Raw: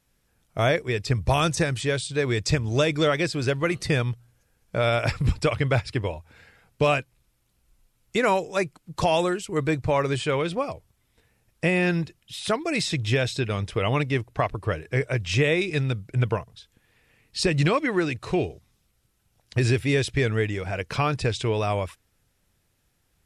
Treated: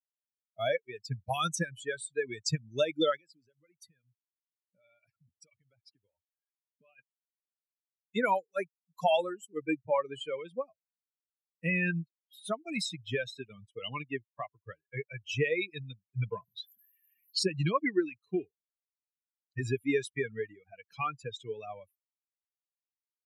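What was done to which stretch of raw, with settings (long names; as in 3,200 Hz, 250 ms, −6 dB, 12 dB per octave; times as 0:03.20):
0:03.17–0:06.99: downward compressor, threshold −31 dBFS
0:16.20–0:17.39: envelope flattener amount 50%
whole clip: spectral dynamics exaggerated over time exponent 3; high-pass filter 150 Hz 24 dB per octave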